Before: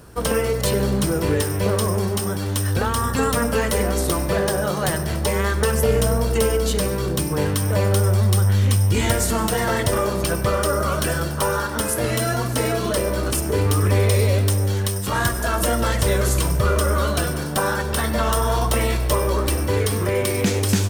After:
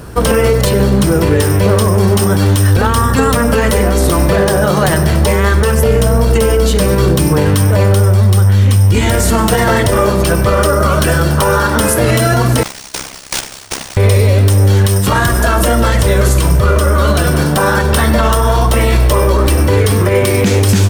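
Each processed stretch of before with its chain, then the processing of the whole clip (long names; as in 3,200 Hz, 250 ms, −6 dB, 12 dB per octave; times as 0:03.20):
0:12.63–0:13.97: inverse Chebyshev high-pass filter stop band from 2,700 Hz + sample-rate reduction 15,000 Hz, jitter 20% + amplitude modulation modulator 66 Hz, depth 65%
whole clip: bass and treble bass +2 dB, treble −3 dB; speech leveller 0.5 s; boost into a limiter +12 dB; level −1 dB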